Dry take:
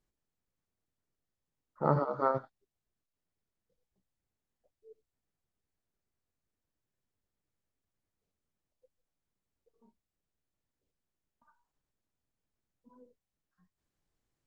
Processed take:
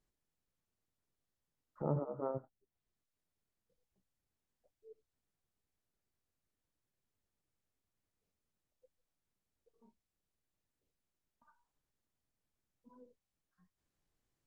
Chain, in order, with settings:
treble cut that deepens with the level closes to 590 Hz, closed at −40.5 dBFS
in parallel at −3 dB: downward compressor, threshold −45 dBFS, peak gain reduction 19.5 dB
on the sum: level −6 dB

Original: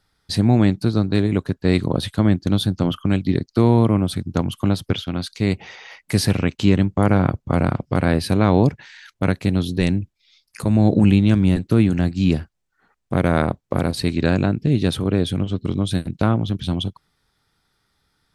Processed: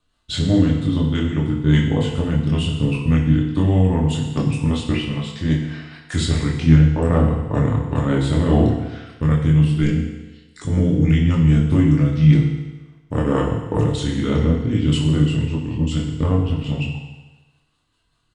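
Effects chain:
rotating-speaker cabinet horn 5 Hz
pitch shifter −3.5 semitones
multi-voice chorus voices 6, 0.17 Hz, delay 24 ms, depth 4.6 ms
feedback delay network reverb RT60 1.2 s, low-frequency decay 0.85×, high-frequency decay 1×, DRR 0.5 dB
level +2.5 dB

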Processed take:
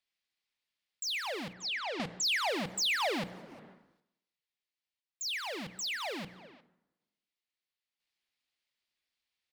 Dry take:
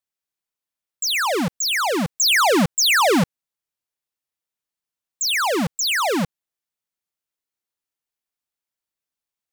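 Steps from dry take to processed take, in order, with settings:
running median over 3 samples
dense smooth reverb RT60 1 s, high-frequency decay 0.65×, DRR 16 dB
sample-and-hold tremolo 1 Hz, depth 80%
dynamic equaliser 650 Hz, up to +7 dB, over −38 dBFS, Q 1
0:01.53–0:02.50: low-pass that shuts in the quiet parts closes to 2,600 Hz, open at −17 dBFS
flat-topped bell 3,000 Hz +9.5 dB
mains-hum notches 60/120/180 Hz
far-end echo of a speakerphone 360 ms, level −26 dB
downward compressor 3 to 1, threshold −38 dBFS, peak gain reduction 21.5 dB
wow of a warped record 78 rpm, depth 100 cents

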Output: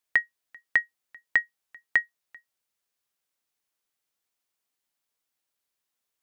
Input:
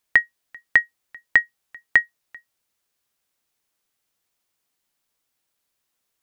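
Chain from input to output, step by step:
low-shelf EQ 230 Hz −5 dB
level −6.5 dB

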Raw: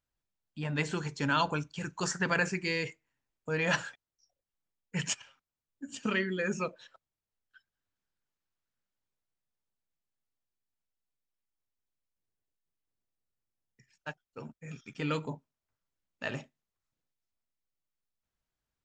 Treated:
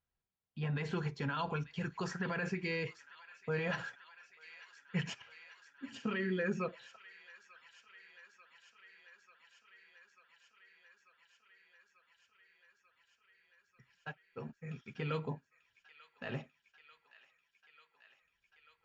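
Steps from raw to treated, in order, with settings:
brickwall limiter −24.5 dBFS, peak gain reduction 10 dB
Gaussian smoothing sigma 1.9 samples
notch comb filter 300 Hz
delay with a high-pass on its return 891 ms, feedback 80%, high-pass 1,600 Hz, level −14.5 dB

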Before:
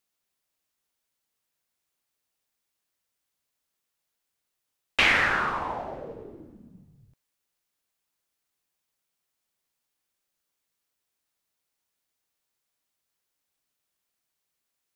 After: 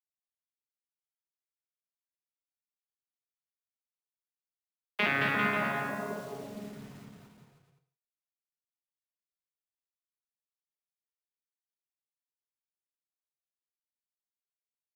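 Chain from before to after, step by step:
vocoder with an arpeggio as carrier bare fifth, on C#3, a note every 281 ms
low-pass filter 4,100 Hz
bit reduction 8 bits
bouncing-ball delay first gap 220 ms, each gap 0.8×, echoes 5
reverb whose tail is shaped and stops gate 200 ms falling, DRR 6.5 dB
level −6 dB

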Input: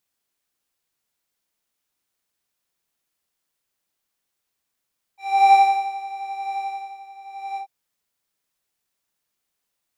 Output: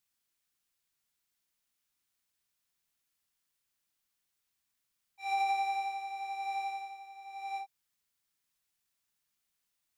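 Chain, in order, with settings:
downward compressor 12 to 1, threshold −20 dBFS, peak gain reduction 11.5 dB
parametric band 510 Hz −7.5 dB 1.9 octaves
level −3 dB

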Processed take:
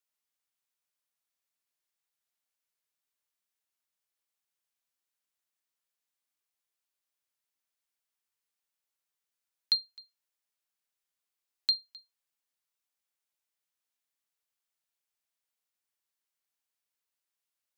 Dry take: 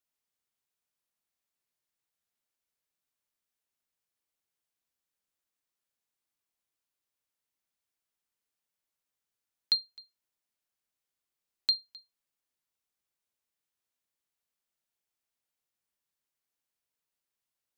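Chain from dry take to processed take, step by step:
low-shelf EQ 450 Hz −10 dB

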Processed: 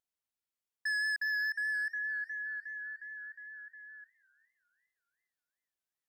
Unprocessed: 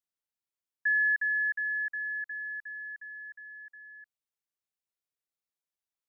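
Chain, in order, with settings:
hard clipping −29.5 dBFS, distortion −10 dB
pitch vibrato 4.9 Hz 22 cents
feedback echo with a swinging delay time 413 ms, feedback 38%, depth 158 cents, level −22.5 dB
level −1.5 dB

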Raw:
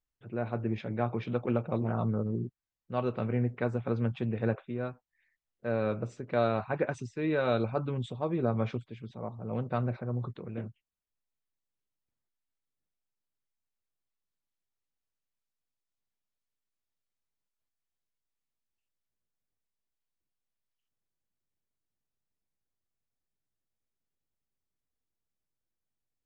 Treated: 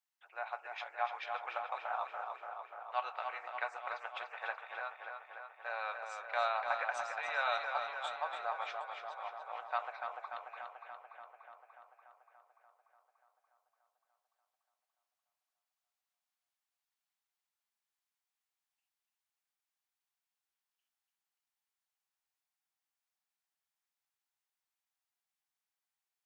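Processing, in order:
elliptic high-pass filter 760 Hz, stop band 70 dB
tape delay 291 ms, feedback 75%, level −5 dB, low-pass 4,200 Hz
level +2 dB

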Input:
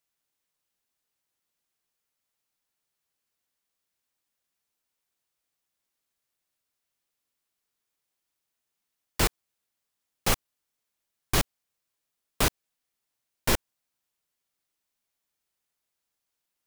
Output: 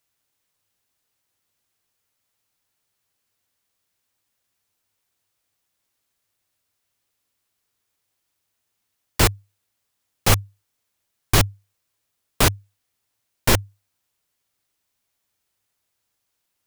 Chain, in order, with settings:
parametric band 100 Hz +13 dB 0.25 octaves
level +7 dB

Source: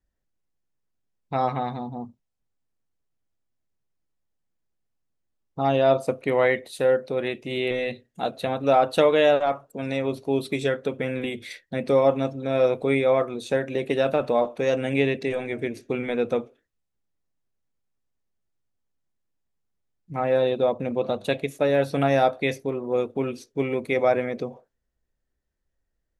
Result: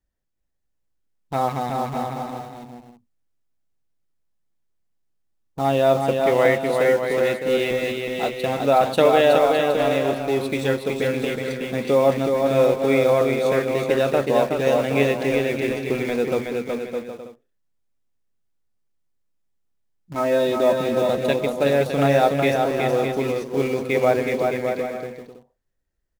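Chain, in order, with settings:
0:20.14–0:20.73: comb filter 3.2 ms, depth 83%
in parallel at −9 dB: bit reduction 5 bits
on the sum: bouncing-ball delay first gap 370 ms, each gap 0.65×, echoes 5
level −1 dB

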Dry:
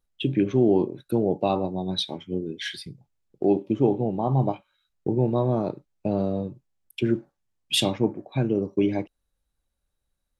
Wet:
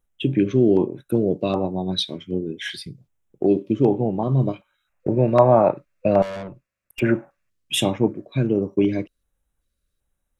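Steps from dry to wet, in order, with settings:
auto-filter notch square 1.3 Hz 820–4,500 Hz
0:04.87–0:07.49: gain on a spectral selection 510–2,800 Hz +11 dB
0:06.22–0:07.00: tube saturation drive 33 dB, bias 0.6
level +3.5 dB

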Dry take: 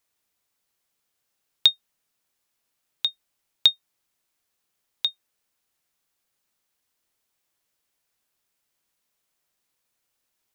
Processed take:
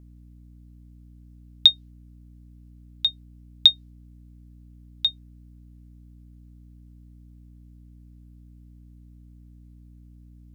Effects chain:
dynamic equaliser 4,100 Hz, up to +8 dB, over −33 dBFS, Q 1.3
mains hum 60 Hz, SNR 17 dB
level −4 dB

